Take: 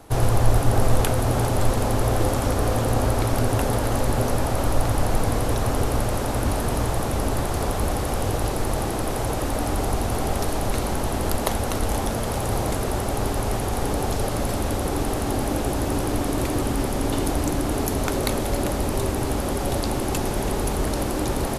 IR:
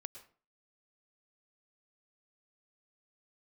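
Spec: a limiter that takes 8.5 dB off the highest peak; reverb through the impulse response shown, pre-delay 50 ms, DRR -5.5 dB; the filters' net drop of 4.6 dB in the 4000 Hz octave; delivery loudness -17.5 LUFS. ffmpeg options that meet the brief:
-filter_complex "[0:a]equalizer=f=4k:t=o:g=-6,alimiter=limit=-12.5dB:level=0:latency=1,asplit=2[a][b];[1:a]atrim=start_sample=2205,adelay=50[c];[b][c]afir=irnorm=-1:irlink=0,volume=10dB[d];[a][d]amix=inputs=2:normalize=0,volume=1dB"

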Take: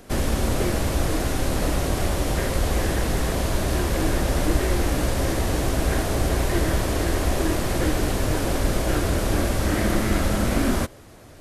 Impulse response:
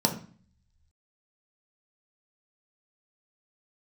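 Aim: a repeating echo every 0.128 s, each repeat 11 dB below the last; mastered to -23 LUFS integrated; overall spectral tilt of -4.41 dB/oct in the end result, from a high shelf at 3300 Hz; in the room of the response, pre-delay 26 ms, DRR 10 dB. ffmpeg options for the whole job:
-filter_complex "[0:a]highshelf=f=3.3k:g=6.5,aecho=1:1:128|256|384:0.282|0.0789|0.0221,asplit=2[a][b];[1:a]atrim=start_sample=2205,adelay=26[c];[b][c]afir=irnorm=-1:irlink=0,volume=-21dB[d];[a][d]amix=inputs=2:normalize=0,volume=-1.5dB"

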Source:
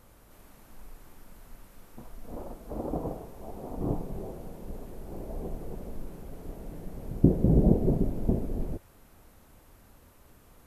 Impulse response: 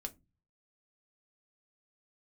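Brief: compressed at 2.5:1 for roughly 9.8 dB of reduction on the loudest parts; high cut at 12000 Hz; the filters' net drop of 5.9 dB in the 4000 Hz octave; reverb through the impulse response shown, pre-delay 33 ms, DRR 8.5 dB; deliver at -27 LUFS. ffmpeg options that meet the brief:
-filter_complex "[0:a]lowpass=12k,equalizer=f=4k:t=o:g=-8,acompressor=threshold=-30dB:ratio=2.5,asplit=2[a][b];[1:a]atrim=start_sample=2205,adelay=33[c];[b][c]afir=irnorm=-1:irlink=0,volume=-6dB[d];[a][d]amix=inputs=2:normalize=0,volume=10dB"

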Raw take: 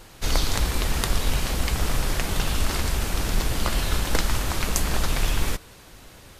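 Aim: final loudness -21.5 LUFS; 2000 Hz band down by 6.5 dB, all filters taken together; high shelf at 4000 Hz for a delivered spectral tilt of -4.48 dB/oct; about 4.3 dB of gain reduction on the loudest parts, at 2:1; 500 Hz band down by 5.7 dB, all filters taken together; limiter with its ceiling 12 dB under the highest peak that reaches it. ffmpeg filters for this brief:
-af "equalizer=f=500:t=o:g=-7,equalizer=f=2k:t=o:g=-6.5,highshelf=f=4k:g=-6.5,acompressor=threshold=-24dB:ratio=2,volume=13.5dB,alimiter=limit=-9dB:level=0:latency=1"

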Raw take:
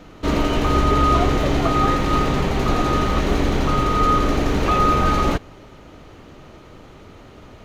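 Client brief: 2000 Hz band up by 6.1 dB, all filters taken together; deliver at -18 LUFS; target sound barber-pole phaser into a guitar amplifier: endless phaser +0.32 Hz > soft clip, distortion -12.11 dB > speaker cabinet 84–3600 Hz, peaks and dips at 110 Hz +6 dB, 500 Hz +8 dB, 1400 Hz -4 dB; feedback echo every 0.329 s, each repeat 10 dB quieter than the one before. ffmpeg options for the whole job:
-filter_complex "[0:a]equalizer=f=2k:t=o:g=8.5,aecho=1:1:329|658|987|1316:0.316|0.101|0.0324|0.0104,asplit=2[a][b];[b]afreqshift=0.32[c];[a][c]amix=inputs=2:normalize=1,asoftclip=threshold=-17dB,highpass=84,equalizer=f=110:t=q:w=4:g=6,equalizer=f=500:t=q:w=4:g=8,equalizer=f=1.4k:t=q:w=4:g=-4,lowpass=f=3.6k:w=0.5412,lowpass=f=3.6k:w=1.3066,volume=5.5dB"

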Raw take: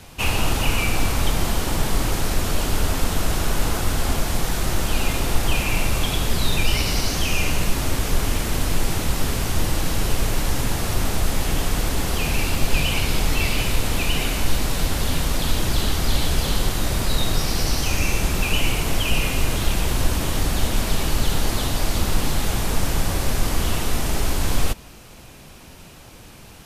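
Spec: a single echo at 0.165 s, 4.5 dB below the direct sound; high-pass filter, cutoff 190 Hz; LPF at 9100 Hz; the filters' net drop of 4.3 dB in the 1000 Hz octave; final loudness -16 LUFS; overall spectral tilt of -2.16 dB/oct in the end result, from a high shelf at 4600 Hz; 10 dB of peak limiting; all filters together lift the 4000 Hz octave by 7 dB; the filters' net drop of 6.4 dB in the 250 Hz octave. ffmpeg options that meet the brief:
-af "highpass=190,lowpass=9.1k,equalizer=f=250:t=o:g=-6,equalizer=f=1k:t=o:g=-6,equalizer=f=4k:t=o:g=6.5,highshelf=f=4.6k:g=6,alimiter=limit=-18.5dB:level=0:latency=1,aecho=1:1:165:0.596,volume=8dB"

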